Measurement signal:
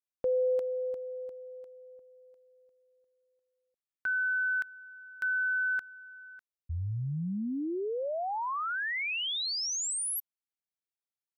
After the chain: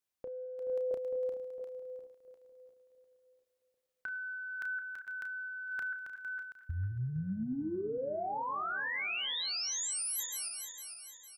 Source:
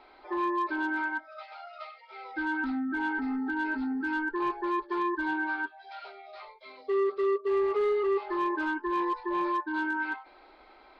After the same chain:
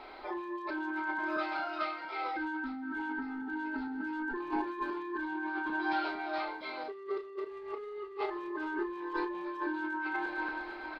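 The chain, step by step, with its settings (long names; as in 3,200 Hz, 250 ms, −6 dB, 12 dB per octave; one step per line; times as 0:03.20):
feedback delay that plays each chunk backwards 228 ms, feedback 66%, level −13.5 dB
compressor whose output falls as the input rises −37 dBFS, ratio −1
double-tracking delay 32 ms −8.5 dB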